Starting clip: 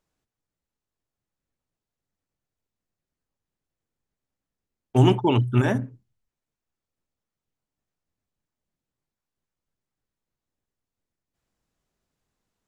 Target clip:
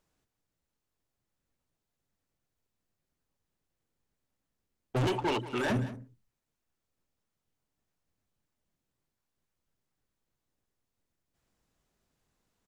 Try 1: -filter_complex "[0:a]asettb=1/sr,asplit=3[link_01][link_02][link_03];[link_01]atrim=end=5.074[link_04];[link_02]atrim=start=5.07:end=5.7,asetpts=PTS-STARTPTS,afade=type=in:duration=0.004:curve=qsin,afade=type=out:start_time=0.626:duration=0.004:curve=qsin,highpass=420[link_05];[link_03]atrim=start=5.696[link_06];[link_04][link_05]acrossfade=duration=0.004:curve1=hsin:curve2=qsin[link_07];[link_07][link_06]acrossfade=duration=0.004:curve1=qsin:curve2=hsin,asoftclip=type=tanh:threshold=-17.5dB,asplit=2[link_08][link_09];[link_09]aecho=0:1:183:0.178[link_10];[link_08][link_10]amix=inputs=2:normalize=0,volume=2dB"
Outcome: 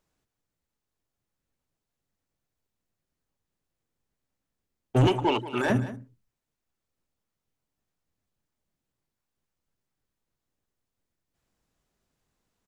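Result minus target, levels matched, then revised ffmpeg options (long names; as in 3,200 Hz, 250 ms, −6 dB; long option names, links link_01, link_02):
soft clipping: distortion −6 dB
-filter_complex "[0:a]asettb=1/sr,asplit=3[link_01][link_02][link_03];[link_01]atrim=end=5.074[link_04];[link_02]atrim=start=5.07:end=5.7,asetpts=PTS-STARTPTS,afade=type=in:duration=0.004:curve=qsin,afade=type=out:start_time=0.626:duration=0.004:curve=qsin,highpass=420[link_05];[link_03]atrim=start=5.696[link_06];[link_04][link_05]acrossfade=duration=0.004:curve1=hsin:curve2=qsin[link_07];[link_07][link_06]acrossfade=duration=0.004:curve1=qsin:curve2=hsin,asoftclip=type=tanh:threshold=-28dB,asplit=2[link_08][link_09];[link_09]aecho=0:1:183:0.178[link_10];[link_08][link_10]amix=inputs=2:normalize=0,volume=2dB"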